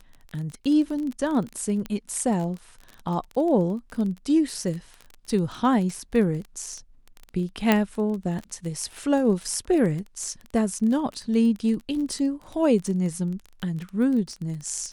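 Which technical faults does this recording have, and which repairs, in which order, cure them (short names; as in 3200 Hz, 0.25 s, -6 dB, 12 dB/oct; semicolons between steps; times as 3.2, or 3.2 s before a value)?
crackle 21/s -30 dBFS
1.86 pop -19 dBFS
7.72 pop -6 dBFS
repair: de-click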